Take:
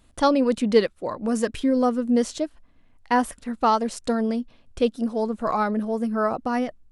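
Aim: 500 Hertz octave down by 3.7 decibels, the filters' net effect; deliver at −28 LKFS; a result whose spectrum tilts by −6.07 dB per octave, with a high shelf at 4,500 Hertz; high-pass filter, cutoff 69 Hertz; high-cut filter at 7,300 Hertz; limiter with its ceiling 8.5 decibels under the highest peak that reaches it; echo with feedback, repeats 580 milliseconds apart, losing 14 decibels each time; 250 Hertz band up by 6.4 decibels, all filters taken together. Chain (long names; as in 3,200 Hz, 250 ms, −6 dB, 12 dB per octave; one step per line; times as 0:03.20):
high-pass filter 69 Hz
low-pass filter 7,300 Hz
parametric band 250 Hz +8 dB
parametric band 500 Hz −6 dB
high-shelf EQ 4,500 Hz −5 dB
brickwall limiter −14 dBFS
repeating echo 580 ms, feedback 20%, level −14 dB
level −5 dB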